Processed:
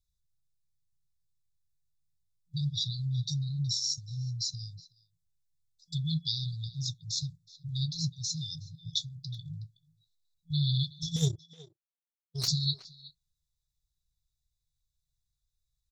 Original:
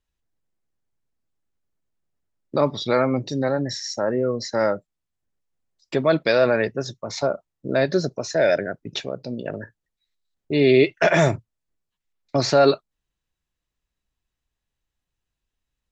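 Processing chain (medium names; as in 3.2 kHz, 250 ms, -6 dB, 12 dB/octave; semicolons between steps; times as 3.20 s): FFT band-reject 170–3400 Hz; 11.16–12.48 s: power-law waveshaper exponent 2; speakerphone echo 370 ms, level -14 dB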